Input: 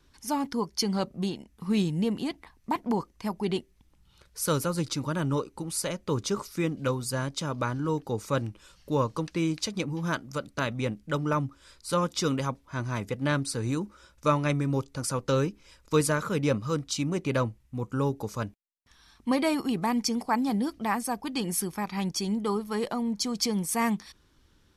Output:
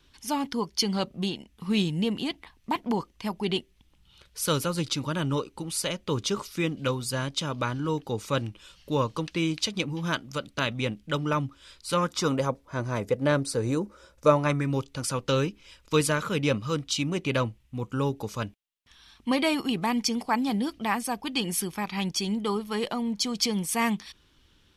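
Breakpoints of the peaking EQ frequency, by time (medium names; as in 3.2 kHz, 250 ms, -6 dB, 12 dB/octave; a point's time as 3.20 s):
peaking EQ +9 dB 0.88 oct
11.88 s 3.1 kHz
12.43 s 510 Hz
14.32 s 510 Hz
14.73 s 3 kHz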